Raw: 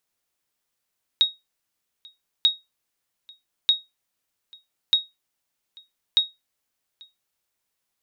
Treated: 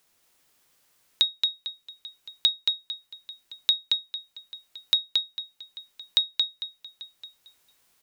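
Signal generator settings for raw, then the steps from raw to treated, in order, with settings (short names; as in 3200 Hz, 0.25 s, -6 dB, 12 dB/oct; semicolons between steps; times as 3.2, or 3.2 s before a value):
sonar ping 3770 Hz, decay 0.20 s, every 1.24 s, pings 5, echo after 0.84 s, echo -28 dB -9.5 dBFS
on a send: feedback echo 0.225 s, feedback 23%, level -3.5 dB; on the sum: three-band squash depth 40%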